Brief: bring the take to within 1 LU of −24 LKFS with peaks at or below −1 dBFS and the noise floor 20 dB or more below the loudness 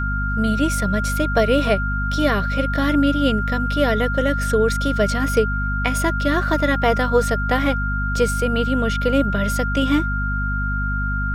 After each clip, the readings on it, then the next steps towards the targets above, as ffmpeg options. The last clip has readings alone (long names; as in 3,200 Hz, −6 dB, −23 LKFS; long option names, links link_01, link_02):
mains hum 50 Hz; hum harmonics up to 250 Hz; level of the hum −21 dBFS; interfering tone 1,400 Hz; level of the tone −24 dBFS; integrated loudness −20.0 LKFS; sample peak −4.5 dBFS; target loudness −24.0 LKFS
→ -af "bandreject=frequency=50:width_type=h:width=6,bandreject=frequency=100:width_type=h:width=6,bandreject=frequency=150:width_type=h:width=6,bandreject=frequency=200:width_type=h:width=6,bandreject=frequency=250:width_type=h:width=6"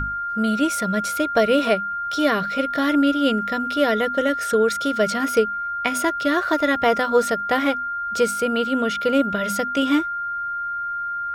mains hum none found; interfering tone 1,400 Hz; level of the tone −24 dBFS
→ -af "bandreject=frequency=1400:width=30"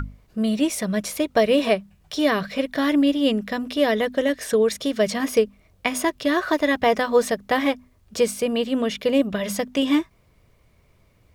interfering tone none found; integrated loudness −22.5 LKFS; sample peak −4.0 dBFS; target loudness −24.0 LKFS
→ -af "volume=-1.5dB"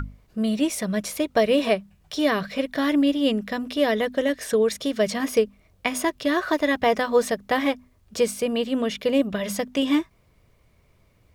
integrated loudness −24.0 LKFS; sample peak −5.5 dBFS; background noise floor −61 dBFS